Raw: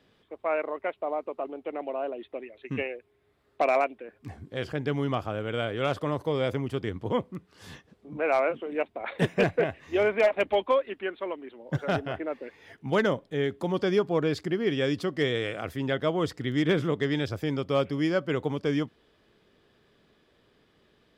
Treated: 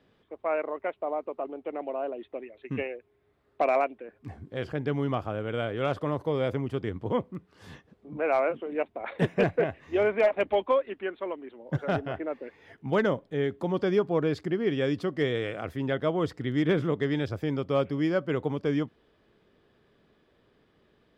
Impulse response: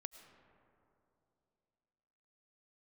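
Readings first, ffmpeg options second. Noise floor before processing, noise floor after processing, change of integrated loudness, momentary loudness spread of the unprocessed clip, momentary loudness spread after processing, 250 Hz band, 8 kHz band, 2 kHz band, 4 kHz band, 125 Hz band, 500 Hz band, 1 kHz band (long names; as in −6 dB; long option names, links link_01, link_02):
−66 dBFS, −67 dBFS, −0.5 dB, 13 LU, 11 LU, 0.0 dB, can't be measured, −2.5 dB, −5.0 dB, 0.0 dB, −0.5 dB, −1.0 dB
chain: -af "highshelf=frequency=3000:gain=-9"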